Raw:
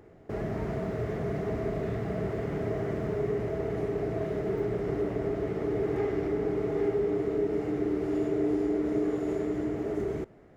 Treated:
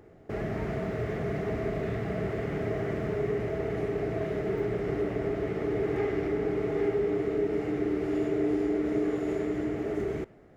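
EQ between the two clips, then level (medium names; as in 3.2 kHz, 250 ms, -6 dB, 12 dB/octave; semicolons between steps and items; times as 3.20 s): band-stop 980 Hz, Q 18; dynamic bell 2.3 kHz, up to +5 dB, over -55 dBFS, Q 1; 0.0 dB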